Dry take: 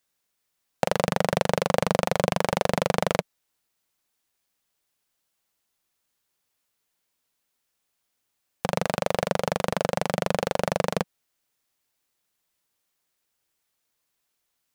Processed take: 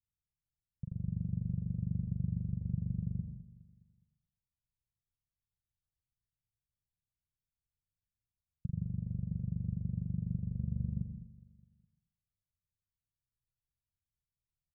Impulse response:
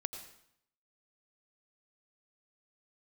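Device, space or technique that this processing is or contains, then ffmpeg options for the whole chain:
club heard from the street: -filter_complex "[0:a]alimiter=limit=-7.5dB:level=0:latency=1,lowpass=frequency=130:width=0.5412,lowpass=frequency=130:width=1.3066[link_01];[1:a]atrim=start_sample=2205[link_02];[link_01][link_02]afir=irnorm=-1:irlink=0,asettb=1/sr,asplit=3[link_03][link_04][link_05];[link_03]atrim=end=10.594[link_06];[link_04]atrim=start=10.59:end=11,asetpts=PTS-STARTPTS,afade=type=in:duration=0.004:curve=qsin,afade=type=out:start_time=0.406:duration=0.004:curve=qsin,asplit=2[link_07][link_08];[link_08]adelay=14,volume=-6dB[link_09];[link_07][link_09]amix=inputs=2:normalize=0,atrim=end_sample=18081[link_10];[link_05]atrim=start=10.996[link_11];[link_06][link_10]acrossfade=duration=0.004:curve1=hsin:curve2=qsin[link_12];[link_12][link_11]acrossfade=duration=0.004:curve1=qsin:curve2=hsin,aecho=1:1:207|414|621|828:0.0891|0.0508|0.029|0.0165,volume=4.5dB"

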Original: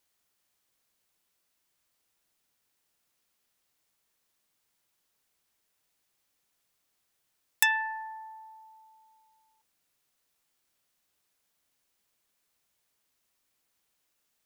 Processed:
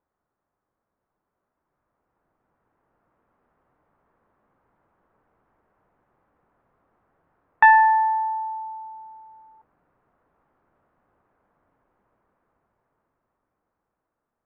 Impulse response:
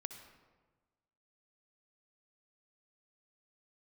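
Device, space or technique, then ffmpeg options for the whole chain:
action camera in a waterproof case: -af "lowpass=frequency=1300:width=0.5412,lowpass=frequency=1300:width=1.3066,dynaudnorm=framelen=390:gausssize=13:maxgain=14dB,volume=6dB" -ar 32000 -c:a aac -b:a 96k

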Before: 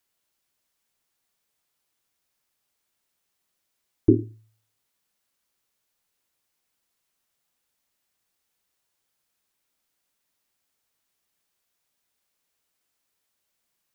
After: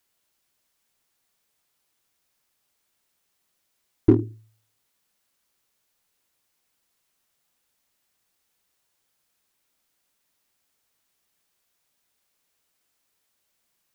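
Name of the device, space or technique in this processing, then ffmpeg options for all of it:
parallel distortion: -filter_complex "[0:a]asplit=2[link_01][link_02];[link_02]asoftclip=type=hard:threshold=-21dB,volume=-6dB[link_03];[link_01][link_03]amix=inputs=2:normalize=0"

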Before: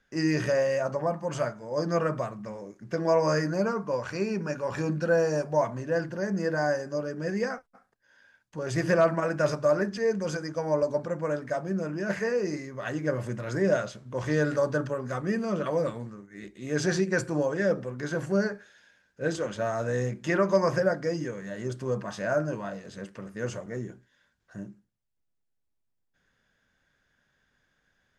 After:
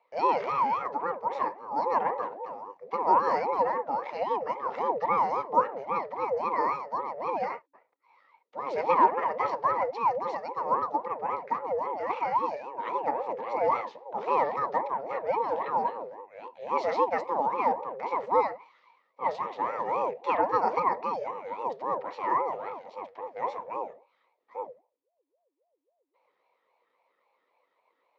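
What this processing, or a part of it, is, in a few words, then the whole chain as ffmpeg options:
voice changer toy: -af "aeval=exprs='val(0)*sin(2*PI*490*n/s+490*0.45/3.7*sin(2*PI*3.7*n/s))':channel_layout=same,highpass=420,equalizer=frequency=510:width_type=q:width=4:gain=10,equalizer=frequency=960:width_type=q:width=4:gain=9,equalizer=frequency=1500:width_type=q:width=4:gain=-8,equalizer=frequency=3000:width_type=q:width=4:gain=-5,lowpass=frequency=3800:width=0.5412,lowpass=frequency=3800:width=1.3066"

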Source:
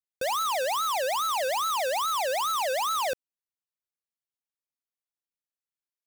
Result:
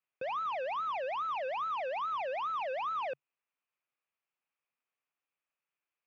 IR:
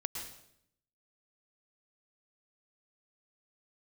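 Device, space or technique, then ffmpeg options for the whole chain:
overdrive pedal into a guitar cabinet: -filter_complex "[0:a]asplit=2[link_01][link_02];[link_02]highpass=frequency=720:poles=1,volume=23dB,asoftclip=type=tanh:threshold=-27dB[link_03];[link_01][link_03]amix=inputs=2:normalize=0,lowpass=frequency=1300:poles=1,volume=-6dB,highpass=100,equalizer=frequency=140:width_type=q:width=4:gain=7,equalizer=frequency=1200:width_type=q:width=4:gain=4,equalizer=frequency=2500:width_type=q:width=4:gain=10,equalizer=frequency=4000:width_type=q:width=4:gain=-8,lowpass=frequency=4400:width=0.5412,lowpass=frequency=4400:width=1.3066,volume=-7dB"

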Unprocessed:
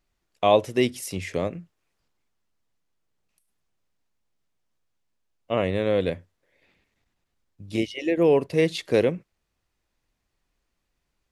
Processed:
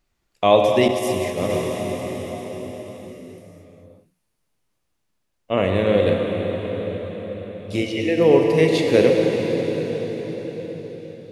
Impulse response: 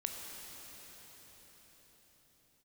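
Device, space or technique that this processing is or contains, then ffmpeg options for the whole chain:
cathedral: -filter_complex "[1:a]atrim=start_sample=2205[link_01];[0:a][link_01]afir=irnorm=-1:irlink=0,asettb=1/sr,asplit=3[link_02][link_03][link_04];[link_02]atrim=end=0.884[link_05];[link_03]atrim=start=0.88:end=1.5,asetpts=PTS-STARTPTS,afade=type=in:duration=0.004:curve=qsin,afade=type=out:start_time=0.616:duration=0.004:curve=qsin,agate=range=-33dB:threshold=-20dB:ratio=3:detection=peak[link_06];[link_04]atrim=start=1.496[link_07];[link_05][link_06]acrossfade=duration=0.004:curve1=hsin:curve2=qsin[link_08];[link_08][link_07]acrossfade=duration=0.004:curve1=qsin:curve2=hsin,volume=5dB"

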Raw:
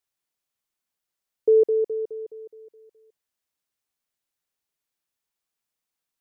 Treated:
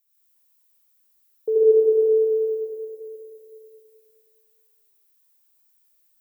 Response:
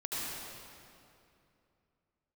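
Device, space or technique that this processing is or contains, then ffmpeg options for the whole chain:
stairwell: -filter_complex "[0:a]aemphasis=mode=production:type=bsi[link_01];[1:a]atrim=start_sample=2205[link_02];[link_01][link_02]afir=irnorm=-1:irlink=0"

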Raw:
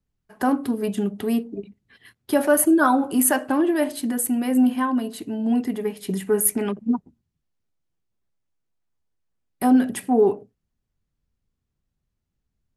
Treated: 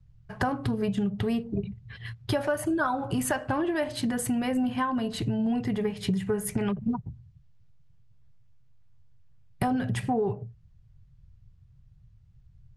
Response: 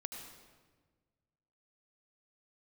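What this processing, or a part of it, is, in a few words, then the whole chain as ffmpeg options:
jukebox: -af "lowpass=5500,lowshelf=frequency=180:width_type=q:width=3:gain=13.5,acompressor=threshold=-32dB:ratio=6,volume=7dB"

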